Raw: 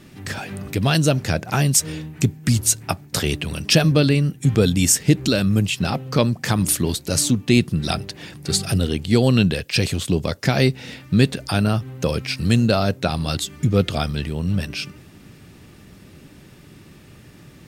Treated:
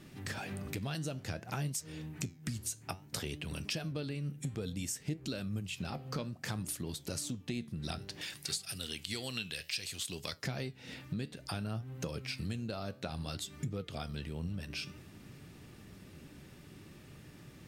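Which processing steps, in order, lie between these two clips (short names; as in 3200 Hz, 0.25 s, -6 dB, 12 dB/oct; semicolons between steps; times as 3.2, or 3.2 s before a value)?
8.21–10.33 tilt shelf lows -10 dB, about 1200 Hz; compressor 6:1, threshold -28 dBFS, peak gain reduction 19 dB; flange 0.58 Hz, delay 6 ms, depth 8.2 ms, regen +83%; gain -3.5 dB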